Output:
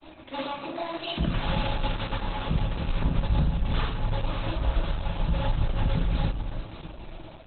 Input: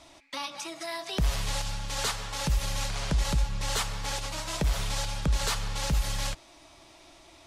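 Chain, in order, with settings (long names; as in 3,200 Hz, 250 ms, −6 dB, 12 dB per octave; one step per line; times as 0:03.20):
gain on a spectral selection 0:01.35–0:01.97, 210–11,000 Hz +7 dB
notch filter 2,000 Hz, Q 5.1
gain on a spectral selection 0:01.08–0:01.32, 380–1,100 Hz −28 dB
graphic EQ with 15 bands 160 Hz +5 dB, 4,000 Hz −6 dB, 10,000 Hz +10 dB
in parallel at +3 dB: downward compressor 6 to 1, threshold −41 dBFS, peak gain reduction 19 dB
on the sum: granular cloud, pitch spread up and down by 0 semitones
soft clipping −26 dBFS, distortion −10 dB
on a send: delay that swaps between a low-pass and a high-pass 292 ms, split 880 Hz, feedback 52%, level −4 dB
on the sum: rectangular room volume 500 cubic metres, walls furnished, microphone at 2.6 metres
Opus 8 kbit/s 48,000 Hz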